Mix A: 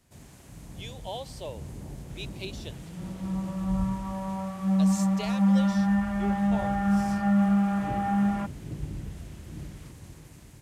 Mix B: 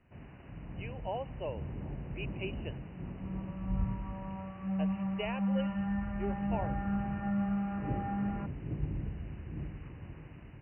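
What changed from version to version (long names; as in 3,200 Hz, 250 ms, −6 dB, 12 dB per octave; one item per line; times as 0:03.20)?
second sound −10.0 dB
master: add linear-phase brick-wall low-pass 3,000 Hz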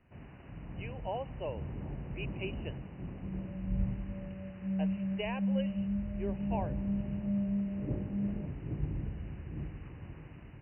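second sound: add Butterworth low-pass 650 Hz 96 dB per octave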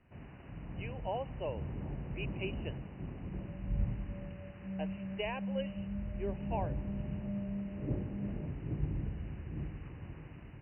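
second sound: add high-pass filter 400 Hz 6 dB per octave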